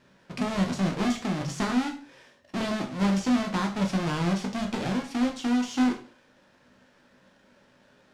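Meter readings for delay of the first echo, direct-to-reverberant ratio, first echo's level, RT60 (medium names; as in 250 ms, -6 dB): no echo, 2.0 dB, no echo, 0.40 s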